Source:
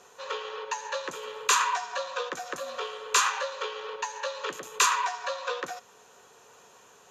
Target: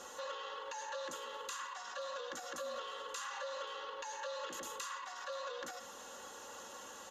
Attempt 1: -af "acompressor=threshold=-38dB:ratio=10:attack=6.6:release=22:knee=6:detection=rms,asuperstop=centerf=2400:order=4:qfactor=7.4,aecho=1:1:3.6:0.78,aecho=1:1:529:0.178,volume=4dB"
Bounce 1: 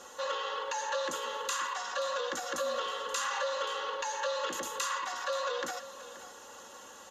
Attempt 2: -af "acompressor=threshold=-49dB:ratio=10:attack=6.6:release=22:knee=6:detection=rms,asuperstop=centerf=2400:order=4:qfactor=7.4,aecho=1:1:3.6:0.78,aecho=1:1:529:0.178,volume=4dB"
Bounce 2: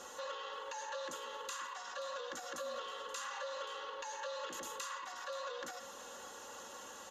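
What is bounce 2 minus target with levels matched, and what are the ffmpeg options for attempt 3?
echo-to-direct +7 dB
-af "acompressor=threshold=-49dB:ratio=10:attack=6.6:release=22:knee=6:detection=rms,asuperstop=centerf=2400:order=4:qfactor=7.4,aecho=1:1:3.6:0.78,aecho=1:1:529:0.0794,volume=4dB"

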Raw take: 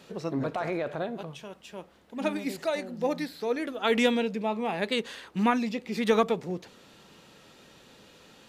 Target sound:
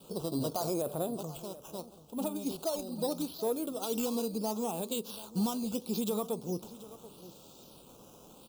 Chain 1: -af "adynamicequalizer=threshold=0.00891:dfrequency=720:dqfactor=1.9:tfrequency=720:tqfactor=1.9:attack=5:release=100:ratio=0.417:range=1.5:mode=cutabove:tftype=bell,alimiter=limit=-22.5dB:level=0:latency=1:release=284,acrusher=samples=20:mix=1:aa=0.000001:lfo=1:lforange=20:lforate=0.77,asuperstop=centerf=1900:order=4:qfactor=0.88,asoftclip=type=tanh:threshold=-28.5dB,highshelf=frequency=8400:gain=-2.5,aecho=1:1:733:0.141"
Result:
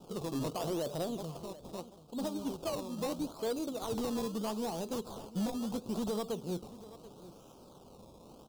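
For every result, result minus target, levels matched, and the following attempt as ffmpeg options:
soft clipping: distortion +14 dB; sample-and-hold swept by an LFO: distortion +8 dB; 8,000 Hz band −3.0 dB
-af "adynamicequalizer=threshold=0.00891:dfrequency=720:dqfactor=1.9:tfrequency=720:tqfactor=1.9:attack=5:release=100:ratio=0.417:range=1.5:mode=cutabove:tftype=bell,alimiter=limit=-22.5dB:level=0:latency=1:release=284,acrusher=samples=20:mix=1:aa=0.000001:lfo=1:lforange=20:lforate=0.77,asuperstop=centerf=1900:order=4:qfactor=0.88,asoftclip=type=tanh:threshold=-19.5dB,highshelf=frequency=8400:gain=-2.5,aecho=1:1:733:0.141"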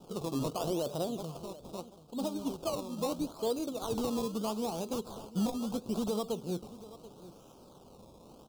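sample-and-hold swept by an LFO: distortion +8 dB; 8,000 Hz band −3.0 dB
-af "adynamicequalizer=threshold=0.00891:dfrequency=720:dqfactor=1.9:tfrequency=720:tqfactor=1.9:attack=5:release=100:ratio=0.417:range=1.5:mode=cutabove:tftype=bell,alimiter=limit=-22.5dB:level=0:latency=1:release=284,acrusher=samples=7:mix=1:aa=0.000001:lfo=1:lforange=7:lforate=0.77,asuperstop=centerf=1900:order=4:qfactor=0.88,asoftclip=type=tanh:threshold=-19.5dB,highshelf=frequency=8400:gain=-2.5,aecho=1:1:733:0.141"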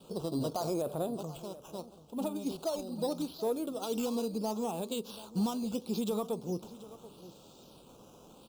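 8,000 Hz band −4.0 dB
-af "adynamicequalizer=threshold=0.00891:dfrequency=720:dqfactor=1.9:tfrequency=720:tqfactor=1.9:attack=5:release=100:ratio=0.417:range=1.5:mode=cutabove:tftype=bell,alimiter=limit=-22.5dB:level=0:latency=1:release=284,acrusher=samples=7:mix=1:aa=0.000001:lfo=1:lforange=7:lforate=0.77,asuperstop=centerf=1900:order=4:qfactor=0.88,asoftclip=type=tanh:threshold=-19.5dB,highshelf=frequency=8400:gain=7.5,aecho=1:1:733:0.141"

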